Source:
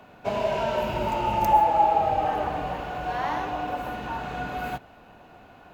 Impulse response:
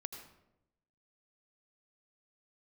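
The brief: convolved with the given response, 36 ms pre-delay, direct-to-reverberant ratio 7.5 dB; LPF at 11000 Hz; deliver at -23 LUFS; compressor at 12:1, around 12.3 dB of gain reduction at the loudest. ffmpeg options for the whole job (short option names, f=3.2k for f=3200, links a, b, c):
-filter_complex "[0:a]lowpass=11k,acompressor=threshold=-27dB:ratio=12,asplit=2[a][b];[1:a]atrim=start_sample=2205,adelay=36[c];[b][c]afir=irnorm=-1:irlink=0,volume=-5dB[d];[a][d]amix=inputs=2:normalize=0,volume=8dB"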